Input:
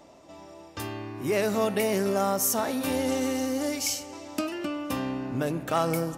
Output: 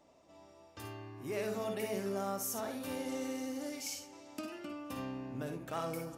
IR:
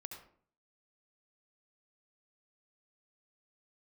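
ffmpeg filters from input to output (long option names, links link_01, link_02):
-filter_complex "[1:a]atrim=start_sample=2205,atrim=end_sample=4410,asetrate=57330,aresample=44100[link_01];[0:a][link_01]afir=irnorm=-1:irlink=0,volume=-5dB"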